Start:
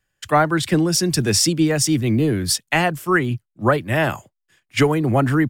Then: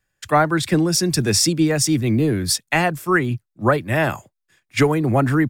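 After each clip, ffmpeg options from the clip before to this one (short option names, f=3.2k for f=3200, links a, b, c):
-af "bandreject=f=3k:w=11"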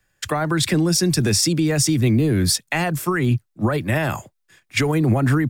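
-filter_complex "[0:a]alimiter=limit=-15.5dB:level=0:latency=1:release=82,acrossover=split=200|3000[a][b][c];[b]acompressor=threshold=-26dB:ratio=6[d];[a][d][c]amix=inputs=3:normalize=0,volume=6.5dB"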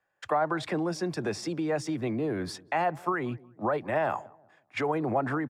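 -filter_complex "[0:a]bandpass=f=780:t=q:w=1.5:csg=0,asplit=2[a][b];[b]adelay=183,lowpass=f=820:p=1,volume=-21dB,asplit=2[c][d];[d]adelay=183,lowpass=f=820:p=1,volume=0.41,asplit=2[e][f];[f]adelay=183,lowpass=f=820:p=1,volume=0.41[g];[a][c][e][g]amix=inputs=4:normalize=0"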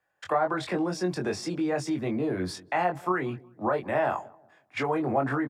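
-filter_complex "[0:a]asplit=2[a][b];[b]adelay=22,volume=-4.5dB[c];[a][c]amix=inputs=2:normalize=0"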